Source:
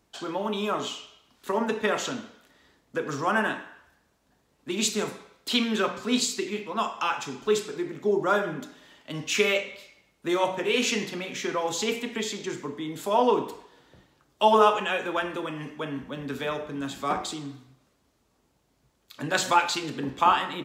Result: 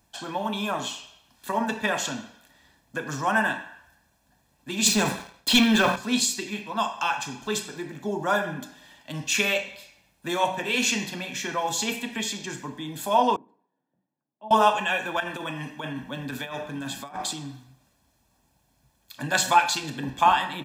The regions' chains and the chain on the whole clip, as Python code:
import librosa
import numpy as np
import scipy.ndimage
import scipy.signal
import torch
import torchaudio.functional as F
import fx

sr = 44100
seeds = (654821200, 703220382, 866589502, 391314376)

y = fx.chain(x, sr, fx.high_shelf(hz=7500.0, db=-7.5),
    fx.leveller(passes=2),
    fx.sustainer(db_per_s=110.0), at=(4.86, 5.96))
y = fx.chain(y, sr, fx.ladder_bandpass(hz=240.0, resonance_pct=35),
    fx.tilt_eq(slope=4.0), at=(13.36, 14.51))
y = fx.chain(y, sr, fx.peak_eq(hz=62.0, db=-12.0, octaves=0.88),
    fx.over_compress(threshold_db=-32.0, ratio=-0.5), at=(15.2, 17.33))
y = fx.high_shelf(y, sr, hz=9200.0, db=9.0)
y = y + 0.6 * np.pad(y, (int(1.2 * sr / 1000.0), 0))[:len(y)]